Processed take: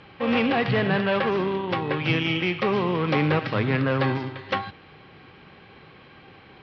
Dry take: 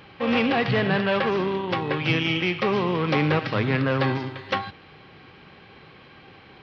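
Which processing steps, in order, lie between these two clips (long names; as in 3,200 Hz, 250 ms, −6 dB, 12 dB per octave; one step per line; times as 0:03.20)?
high-frequency loss of the air 79 metres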